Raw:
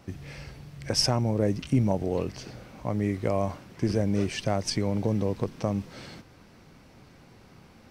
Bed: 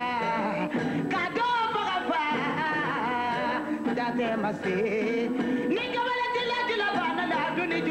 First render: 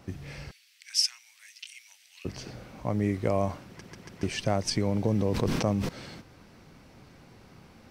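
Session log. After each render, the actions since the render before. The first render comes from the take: 0.51–2.25 inverse Chebyshev high-pass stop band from 490 Hz, stop band 70 dB; 3.67 stutter in place 0.14 s, 4 plays; 5.13–5.89 sustainer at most 28 dB/s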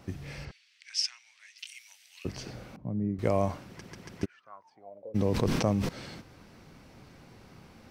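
0.45–1.58 air absorption 93 m; 2.76–3.19 band-pass 170 Hz, Q 1.4; 4.24–5.14 band-pass 1600 Hz -> 480 Hz, Q 19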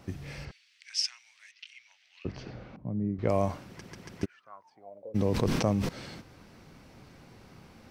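1.51–3.29 air absorption 200 m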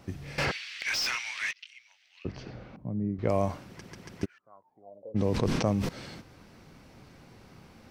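0.38–1.53 overdrive pedal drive 35 dB, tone 2200 Hz, clips at -16.5 dBFS; 4.38–5.77 low-pass opened by the level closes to 580 Hz, open at -21.5 dBFS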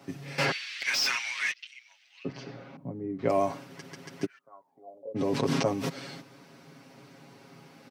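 HPF 150 Hz 24 dB/oct; comb 7.3 ms, depth 84%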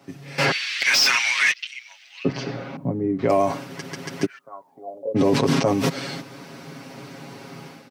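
AGC gain up to 13 dB; limiter -10 dBFS, peak gain reduction 7.5 dB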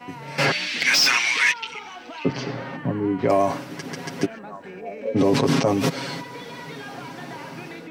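add bed -11.5 dB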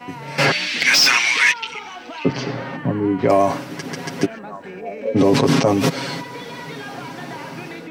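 gain +4 dB

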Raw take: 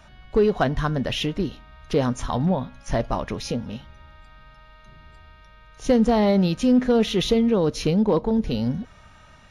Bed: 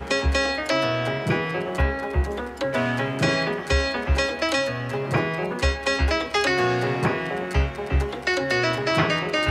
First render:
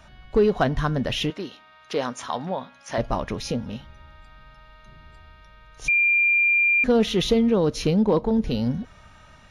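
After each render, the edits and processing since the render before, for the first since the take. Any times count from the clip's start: 1.3–2.98 weighting filter A; 5.88–6.84 bleep 2390 Hz -16 dBFS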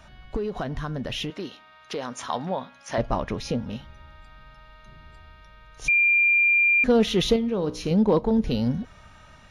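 0.36–2.16 compressor 4:1, threshold -27 dBFS; 2.95–3.7 high shelf 5000 Hz -6.5 dB; 7.36–7.91 resonator 61 Hz, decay 0.53 s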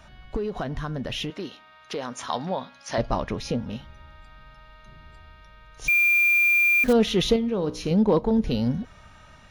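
2.27–3.27 bell 4600 Hz +7 dB 0.62 oct; 5.87–6.93 short-mantissa float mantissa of 2-bit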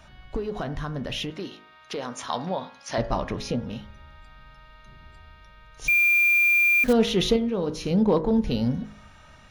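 de-hum 52.25 Hz, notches 39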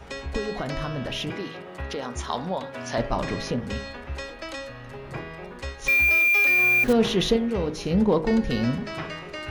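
add bed -12.5 dB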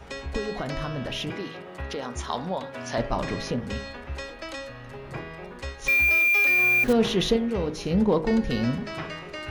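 gain -1 dB

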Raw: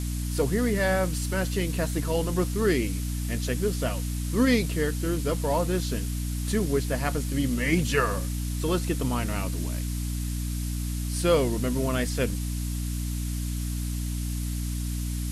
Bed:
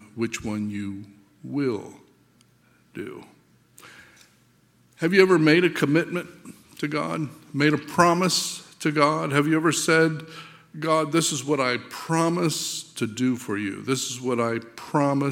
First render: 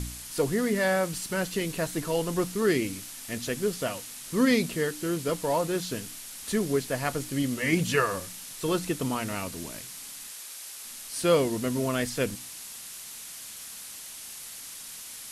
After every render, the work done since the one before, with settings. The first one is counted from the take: de-hum 60 Hz, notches 5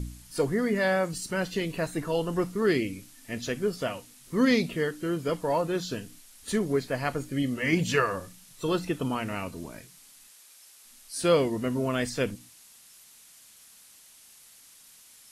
noise print and reduce 12 dB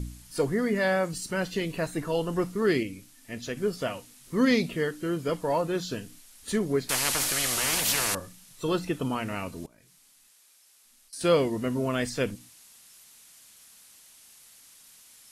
2.83–3.57 gain -3 dB; 6.89–8.15 spectral compressor 10:1; 9.66–11.21 level quantiser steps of 20 dB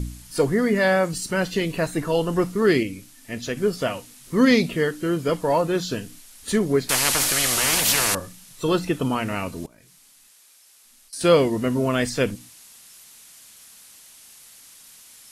gain +6 dB

